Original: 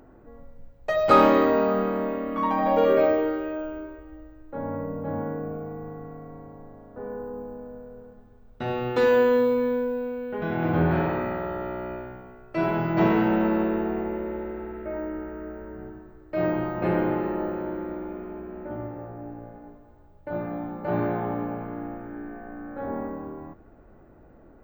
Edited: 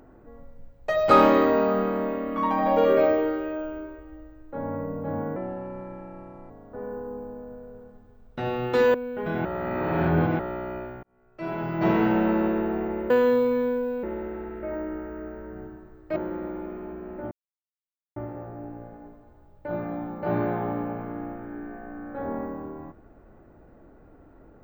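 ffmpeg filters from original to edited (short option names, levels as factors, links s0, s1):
-filter_complex "[0:a]asplit=11[s0][s1][s2][s3][s4][s5][s6][s7][s8][s9][s10];[s0]atrim=end=5.364[s11];[s1]atrim=start=5.36:end=6.73,asetpts=PTS-STARTPTS,asetrate=52920,aresample=44100[s12];[s2]atrim=start=6.726:end=9.172[s13];[s3]atrim=start=10.098:end=10.612[s14];[s4]atrim=start=10.608:end=11.552,asetpts=PTS-STARTPTS,areverse[s15];[s5]atrim=start=11.548:end=12.19,asetpts=PTS-STARTPTS,afade=t=out:st=0.638:d=0.004:c=hsin[s16];[s6]atrim=start=12.19:end=14.262,asetpts=PTS-STARTPTS,afade=t=in:d=1.02[s17];[s7]atrim=start=9.168:end=10.102[s18];[s8]atrim=start=14.258:end=16.392[s19];[s9]atrim=start=17.628:end=18.78,asetpts=PTS-STARTPTS,afade=t=out:st=1.148:d=0.004:c=hsin,apad=pad_dur=0.85[s20];[s10]atrim=start=18.78,asetpts=PTS-STARTPTS,afade=t=in:d=0.004:c=hsin[s21];[s11][s12]acrossfade=d=0.004:c1=hsin:c2=hsin[s22];[s22][s13]acrossfade=d=0.004:c1=hsin:c2=hsin[s23];[s23][s14]acrossfade=d=0.004:c1=hsin:c2=hsin[s24];[s24][s15]acrossfade=d=0.004:c1=hsin:c2=hsin[s25];[s16][s17]concat=n=2:v=0:a=1[s26];[s25][s26]acrossfade=d=0.004:c1=hsin:c2=hsin[s27];[s27][s18]acrossfade=d=0.004:c1=hsin:c2=hsin[s28];[s28][s19]acrossfade=d=0.004:c1=hsin:c2=hsin[s29];[s20][s21]concat=n=2:v=0:a=1[s30];[s29][s30]acrossfade=d=0.004:c1=hsin:c2=hsin"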